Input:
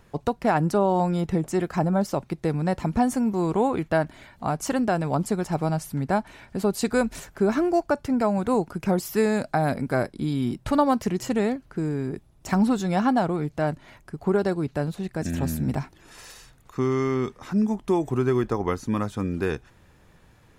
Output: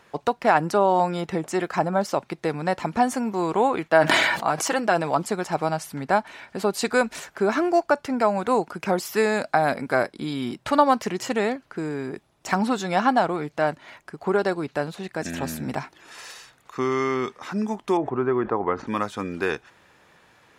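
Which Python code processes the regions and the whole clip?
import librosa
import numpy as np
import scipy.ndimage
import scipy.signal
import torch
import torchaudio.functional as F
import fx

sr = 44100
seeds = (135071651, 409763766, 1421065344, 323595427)

y = fx.chain(x, sr, fx.highpass(hz=180.0, slope=6),
    fx.comb(ms=6.1, depth=0.37),
    fx.sustainer(db_per_s=33.0), at=(3.88, 5.22))
y = fx.chain(y, sr, fx.lowpass(hz=1400.0, slope=12),
    fx.sustainer(db_per_s=110.0), at=(17.97, 18.87))
y = fx.highpass(y, sr, hz=800.0, slope=6)
y = fx.high_shelf(y, sr, hz=7400.0, db=-11.0)
y = F.gain(torch.from_numpy(y), 7.5).numpy()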